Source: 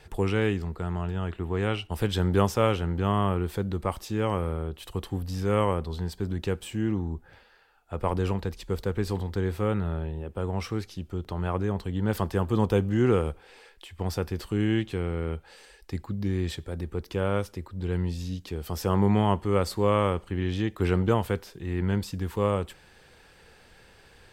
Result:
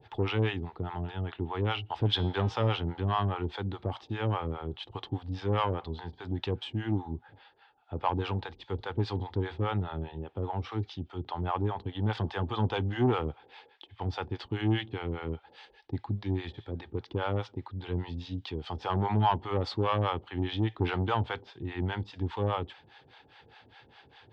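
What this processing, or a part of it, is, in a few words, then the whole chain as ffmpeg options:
guitar amplifier with harmonic tremolo: -filter_complex "[0:a]acrossover=split=570[link_01][link_02];[link_01]aeval=exprs='val(0)*(1-1/2+1/2*cos(2*PI*4.9*n/s))':channel_layout=same[link_03];[link_02]aeval=exprs='val(0)*(1-1/2-1/2*cos(2*PI*4.9*n/s))':channel_layout=same[link_04];[link_03][link_04]amix=inputs=2:normalize=0,asoftclip=type=tanh:threshold=-21dB,highpass=99,equalizer=frequency=110:width_type=q:width=4:gain=7,equalizer=frequency=190:width_type=q:width=4:gain=-7,equalizer=frequency=270:width_type=q:width=4:gain=4,equalizer=frequency=530:width_type=q:width=4:gain=-4,equalizer=frequency=830:width_type=q:width=4:gain=9,equalizer=frequency=3400:width_type=q:width=4:gain=7,lowpass=frequency=4300:width=0.5412,lowpass=frequency=4300:width=1.3066,asplit=3[link_05][link_06][link_07];[link_05]afade=type=out:start_time=2.17:duration=0.02[link_08];[link_06]bandreject=frequency=156.7:width_type=h:width=4,bandreject=frequency=313.4:width_type=h:width=4,bandreject=frequency=470.1:width_type=h:width=4,bandreject=frequency=626.8:width_type=h:width=4,bandreject=frequency=783.5:width_type=h:width=4,bandreject=frequency=940.2:width_type=h:width=4,bandreject=frequency=1096.9:width_type=h:width=4,bandreject=frequency=1253.6:width_type=h:width=4,bandreject=frequency=1410.3:width_type=h:width=4,bandreject=frequency=1567:width_type=h:width=4,bandreject=frequency=1723.7:width_type=h:width=4,bandreject=frequency=1880.4:width_type=h:width=4,bandreject=frequency=2037.1:width_type=h:width=4,bandreject=frequency=2193.8:width_type=h:width=4,bandreject=frequency=2350.5:width_type=h:width=4,bandreject=frequency=2507.2:width_type=h:width=4,bandreject=frequency=2663.9:width_type=h:width=4,bandreject=frequency=2820.6:width_type=h:width=4,bandreject=frequency=2977.3:width_type=h:width=4,bandreject=frequency=3134:width_type=h:width=4,bandreject=frequency=3290.7:width_type=h:width=4,bandreject=frequency=3447.4:width_type=h:width=4,bandreject=frequency=3604.1:width_type=h:width=4,bandreject=frequency=3760.8:width_type=h:width=4,bandreject=frequency=3917.5:width_type=h:width=4,bandreject=frequency=4074.2:width_type=h:width=4,bandreject=frequency=4230.9:width_type=h:width=4,bandreject=frequency=4387.6:width_type=h:width=4,bandreject=frequency=4544.3:width_type=h:width=4,bandreject=frequency=4701:width_type=h:width=4,bandreject=frequency=4857.7:width_type=h:width=4,bandreject=frequency=5014.4:width_type=h:width=4,bandreject=frequency=5171.1:width_type=h:width=4,bandreject=frequency=5327.8:width_type=h:width=4,bandreject=frequency=5484.5:width_type=h:width=4,bandreject=frequency=5641.2:width_type=h:width=4,bandreject=frequency=5797.9:width_type=h:width=4,bandreject=frequency=5954.6:width_type=h:width=4,afade=type=in:start_time=2.17:duration=0.02,afade=type=out:start_time=2.68:duration=0.02[link_09];[link_07]afade=type=in:start_time=2.68:duration=0.02[link_10];[link_08][link_09][link_10]amix=inputs=3:normalize=0,volume=2dB"

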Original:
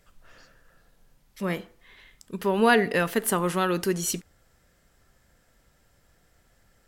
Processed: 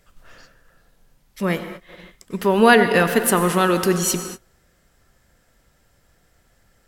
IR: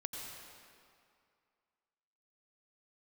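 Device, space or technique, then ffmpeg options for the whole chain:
keyed gated reverb: -filter_complex "[0:a]asplit=3[link_01][link_02][link_03];[1:a]atrim=start_sample=2205[link_04];[link_02][link_04]afir=irnorm=-1:irlink=0[link_05];[link_03]apad=whole_len=303113[link_06];[link_05][link_06]sidechaingate=range=-33dB:threshold=-51dB:ratio=16:detection=peak,volume=-2dB[link_07];[link_01][link_07]amix=inputs=2:normalize=0,volume=3dB"

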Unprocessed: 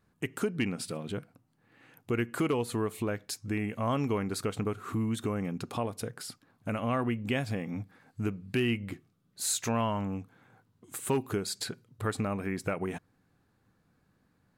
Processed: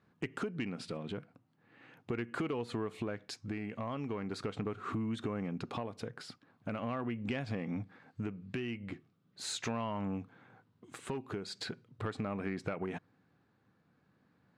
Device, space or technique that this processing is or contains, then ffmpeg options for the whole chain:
AM radio: -af "highpass=110,lowpass=4100,acompressor=threshold=-34dB:ratio=5,asoftclip=type=tanh:threshold=-26dB,tremolo=f=0.4:d=0.27,volume=2dB"

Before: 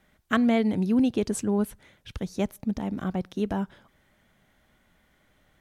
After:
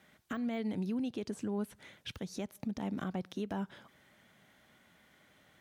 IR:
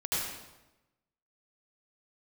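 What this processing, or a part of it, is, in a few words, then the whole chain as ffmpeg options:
broadcast voice chain: -af "highpass=110,deesser=0.95,acompressor=threshold=-32dB:ratio=3,equalizer=frequency=3700:width_type=o:width=2.7:gain=3,alimiter=level_in=4.5dB:limit=-24dB:level=0:latency=1:release=212,volume=-4.5dB"

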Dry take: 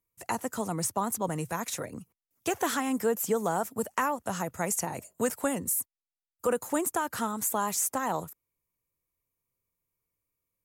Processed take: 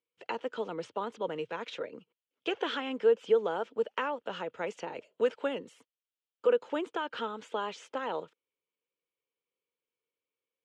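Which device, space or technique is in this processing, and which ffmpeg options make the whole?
phone earpiece: -af "highpass=400,equalizer=frequency=460:width_type=q:width=4:gain=7,equalizer=frequency=730:width_type=q:width=4:gain=-9,equalizer=frequency=1100:width_type=q:width=4:gain=-7,equalizer=frequency=1900:width_type=q:width=4:gain=-6,equalizer=frequency=3100:width_type=q:width=4:gain=8,lowpass=frequency=3500:width=0.5412,lowpass=frequency=3500:width=1.3066"

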